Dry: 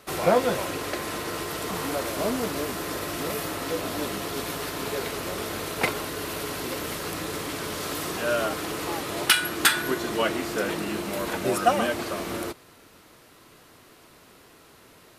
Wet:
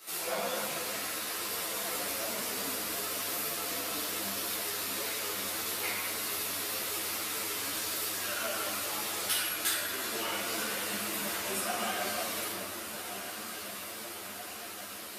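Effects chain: tilt EQ +4 dB/octave; compression 2:1, threshold -40 dBFS, peak gain reduction 18.5 dB; echo that smears into a reverb 1414 ms, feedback 68%, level -9 dB; reverberation RT60 2.2 s, pre-delay 6 ms, DRR -8.5 dB; three-phase chorus; trim -4.5 dB

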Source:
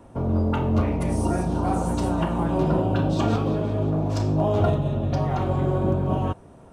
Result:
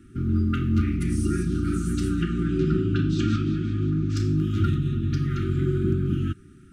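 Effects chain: 2.22–4.17 s: low-pass 7.8 kHz 24 dB/octave; FFT band-reject 390–1200 Hz

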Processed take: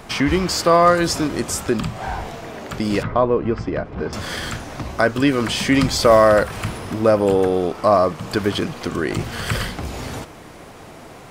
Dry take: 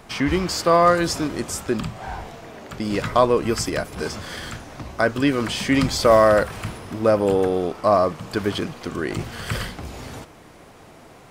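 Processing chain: in parallel at -1.5 dB: compression, threshold -29 dBFS, peak gain reduction 17.5 dB; 3.03–4.13 s: on the sum: tape spacing loss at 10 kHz 41 dB; trim +1 dB

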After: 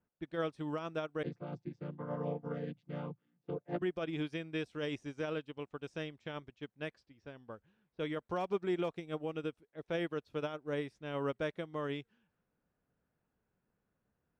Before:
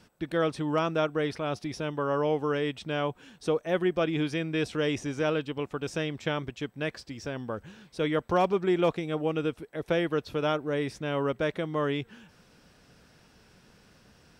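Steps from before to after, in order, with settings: 1.23–3.82 s: vocoder on a held chord major triad, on A#2; level-controlled noise filter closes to 1.4 kHz, open at -27.5 dBFS; peak limiter -21 dBFS, peak gain reduction 6 dB; upward expansion 2.5:1, over -39 dBFS; trim -3 dB

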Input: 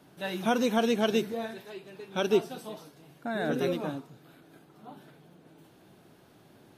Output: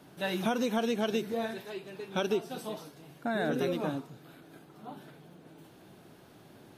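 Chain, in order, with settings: compression 5:1, threshold -29 dBFS, peak gain reduction 10 dB; trim +2.5 dB

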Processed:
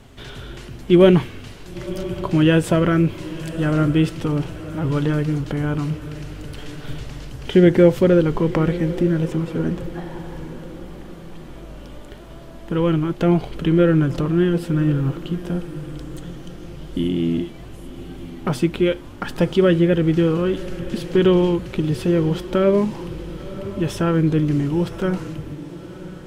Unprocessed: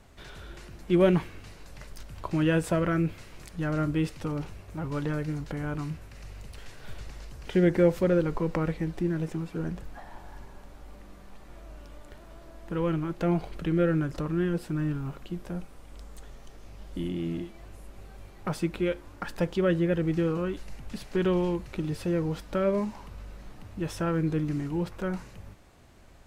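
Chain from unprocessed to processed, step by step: graphic EQ with 31 bands 125 Hz +10 dB, 250 Hz +8 dB, 400 Hz +5 dB, 3.15 kHz +7 dB; echo that smears into a reverb 1013 ms, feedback 41%, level -14.5 dB; trim +7 dB

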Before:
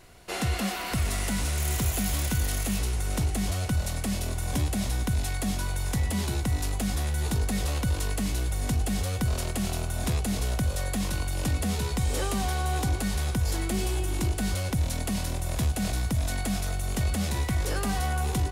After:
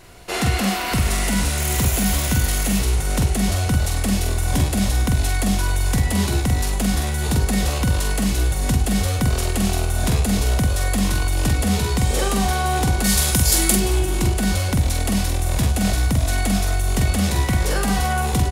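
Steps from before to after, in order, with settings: 13.04–13.75 s: peaking EQ 14 kHz +13.5 dB 2.3 oct; doubling 46 ms -4.5 dB; trim +7 dB

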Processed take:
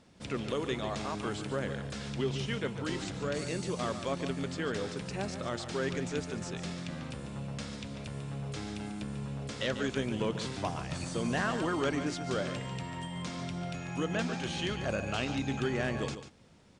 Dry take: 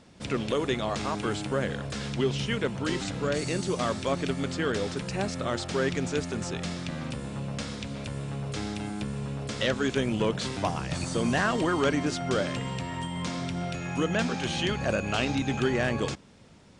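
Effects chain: delay 144 ms -10.5 dB; trim -6 dB

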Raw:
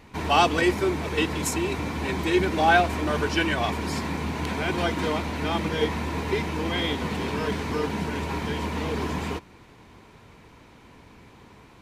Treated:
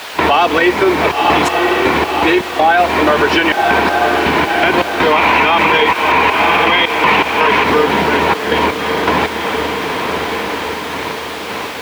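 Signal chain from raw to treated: trance gate ".xxxxx.x..x.x" 81 bpm -24 dB; echo that smears into a reverb 1045 ms, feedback 56%, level -14 dB; compression 4:1, threshold -35 dBFS, peak gain reduction 17.5 dB; 5.12–7.64 s: fifteen-band graphic EQ 1 kHz +8 dB, 2.5 kHz +10 dB, 6.3 kHz +4 dB; word length cut 8-bit, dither triangular; high-pass 71 Hz; three-band isolator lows -14 dB, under 330 Hz, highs -20 dB, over 3.9 kHz; loudness maximiser +29.5 dB; trim -1 dB

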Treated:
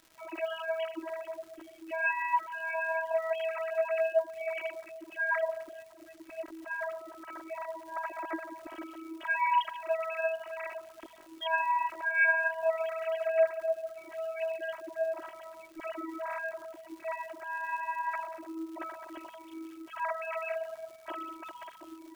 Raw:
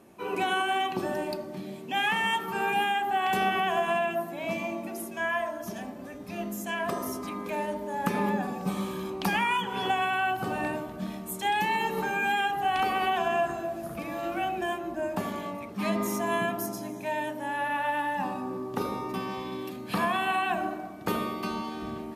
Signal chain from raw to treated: formants replaced by sine waves; robot voice 325 Hz; crackle 260 per s -46 dBFS; bit crusher 11-bit

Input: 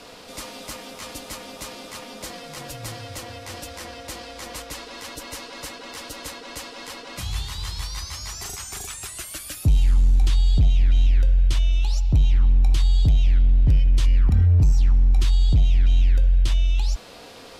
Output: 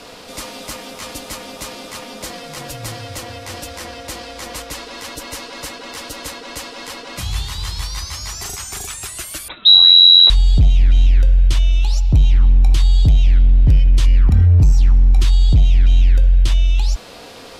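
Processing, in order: 9.48–10.30 s: frequency inversion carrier 3.9 kHz; trim +5.5 dB

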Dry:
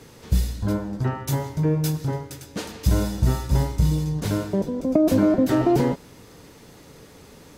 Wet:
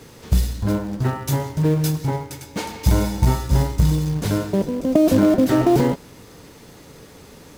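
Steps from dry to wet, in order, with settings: in parallel at -8 dB: companded quantiser 4-bit; 2.03–3.35 s: on the sum: small resonant body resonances 880/2200 Hz, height 16 dB, ringing for 90 ms

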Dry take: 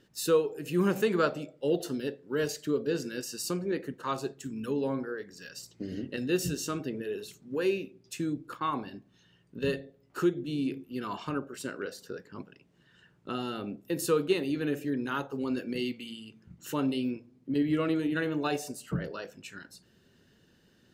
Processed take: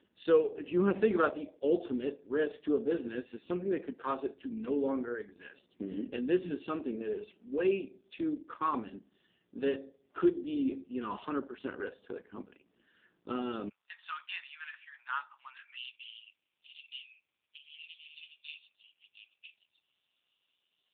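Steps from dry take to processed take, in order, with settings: brick-wall FIR high-pass 180 Hz, from 13.68 s 840 Hz, from 15.75 s 2.3 kHz; AMR-NB 5.15 kbps 8 kHz

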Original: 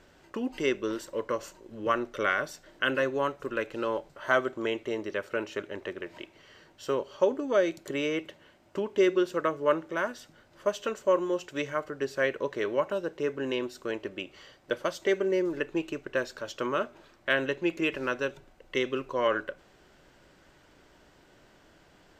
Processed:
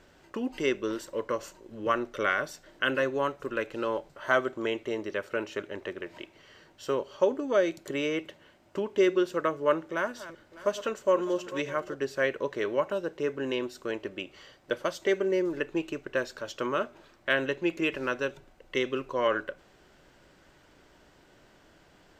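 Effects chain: 9.83–11.95 s: backward echo that repeats 302 ms, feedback 55%, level -14 dB

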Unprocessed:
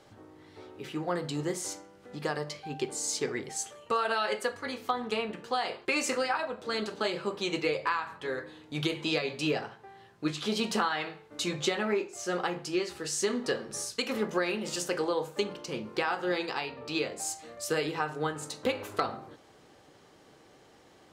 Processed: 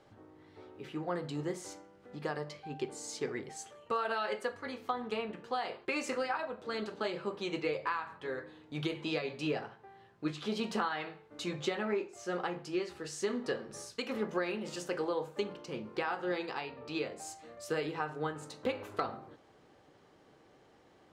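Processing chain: treble shelf 4.1 kHz -10 dB; trim -4 dB

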